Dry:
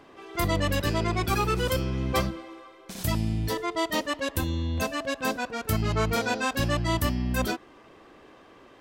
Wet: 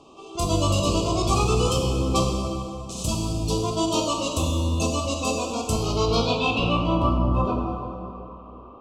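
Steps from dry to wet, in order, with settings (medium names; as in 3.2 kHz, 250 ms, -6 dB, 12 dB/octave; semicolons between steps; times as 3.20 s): elliptic band-stop 1.2–2.6 kHz, stop band 70 dB; plate-style reverb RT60 2.7 s, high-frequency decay 0.65×, DRR 0 dB; low-pass sweep 7.4 kHz -> 1.4 kHz, 5.71–7.27 s; trim +1.5 dB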